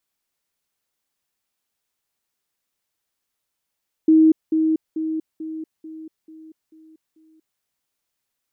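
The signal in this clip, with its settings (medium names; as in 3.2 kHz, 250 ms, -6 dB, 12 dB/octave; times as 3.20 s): level ladder 317 Hz -9.5 dBFS, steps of -6 dB, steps 8, 0.24 s 0.20 s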